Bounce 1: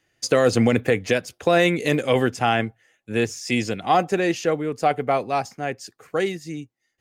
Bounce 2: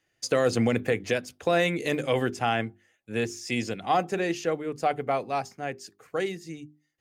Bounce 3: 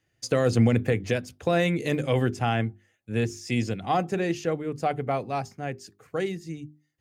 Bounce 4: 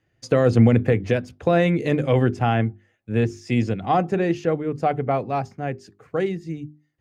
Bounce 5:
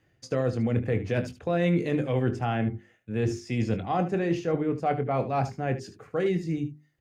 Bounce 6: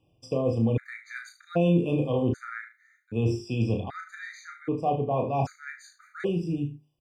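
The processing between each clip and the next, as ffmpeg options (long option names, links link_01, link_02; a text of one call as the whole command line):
ffmpeg -i in.wav -af "bandreject=frequency=50:width_type=h:width=6,bandreject=frequency=100:width_type=h:width=6,bandreject=frequency=150:width_type=h:width=6,bandreject=frequency=200:width_type=h:width=6,bandreject=frequency=250:width_type=h:width=6,bandreject=frequency=300:width_type=h:width=6,bandreject=frequency=350:width_type=h:width=6,bandreject=frequency=400:width_type=h:width=6,volume=-5.5dB" out.wav
ffmpeg -i in.wav -af "equalizer=frequency=84:width=0.47:gain=12,volume=-2dB" out.wav
ffmpeg -i in.wav -af "lowpass=frequency=1800:poles=1,volume=5.5dB" out.wav
ffmpeg -i in.wav -af "areverse,acompressor=threshold=-26dB:ratio=10,areverse,aecho=1:1:23|75:0.299|0.224,volume=3dB" out.wav
ffmpeg -i in.wav -af "aecho=1:1:35|77:0.531|0.168,afftfilt=real='re*gt(sin(2*PI*0.64*pts/sr)*(1-2*mod(floor(b*sr/1024/1200),2)),0)':imag='im*gt(sin(2*PI*0.64*pts/sr)*(1-2*mod(floor(b*sr/1024/1200),2)),0)':win_size=1024:overlap=0.75" out.wav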